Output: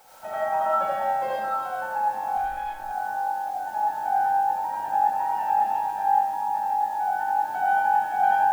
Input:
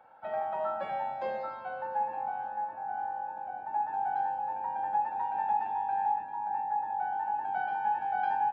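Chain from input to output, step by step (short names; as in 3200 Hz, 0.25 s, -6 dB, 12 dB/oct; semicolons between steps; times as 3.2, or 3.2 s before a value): in parallel at -11.5 dB: requantised 8-bit, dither triangular; 2.37–2.84 on the sum: tube stage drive 30 dB, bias 0.55; reverb RT60 0.35 s, pre-delay 45 ms, DRR -5 dB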